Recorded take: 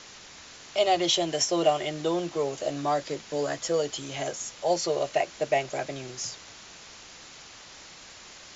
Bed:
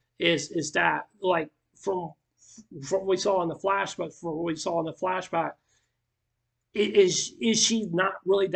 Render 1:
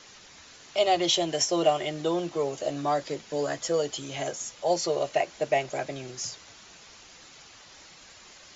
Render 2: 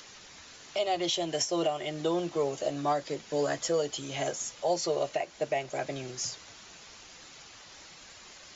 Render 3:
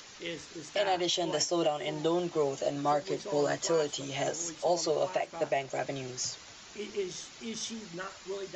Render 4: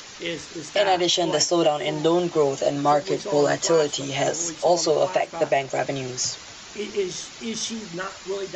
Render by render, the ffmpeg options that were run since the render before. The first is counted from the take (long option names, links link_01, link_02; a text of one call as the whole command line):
ffmpeg -i in.wav -af "afftdn=noise_reduction=6:noise_floor=-48" out.wav
ffmpeg -i in.wav -filter_complex "[0:a]acrossover=split=1200[link_01][link_02];[link_02]acompressor=mode=upward:threshold=-50dB:ratio=2.5[link_03];[link_01][link_03]amix=inputs=2:normalize=0,alimiter=limit=-19dB:level=0:latency=1:release=410" out.wav
ffmpeg -i in.wav -i bed.wav -filter_complex "[1:a]volume=-15.5dB[link_01];[0:a][link_01]amix=inputs=2:normalize=0" out.wav
ffmpeg -i in.wav -af "volume=9dB" out.wav